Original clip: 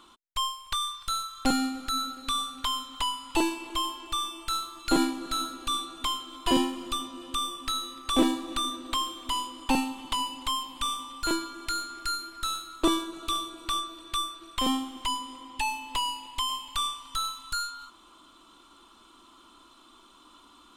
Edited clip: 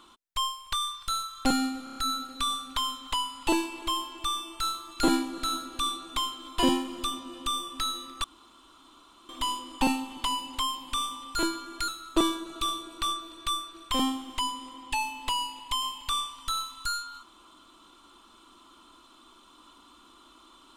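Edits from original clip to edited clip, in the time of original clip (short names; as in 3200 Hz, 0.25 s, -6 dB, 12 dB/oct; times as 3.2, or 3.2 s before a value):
1.84 stutter 0.03 s, 5 plays
8.12–9.17 room tone
11.76–12.55 cut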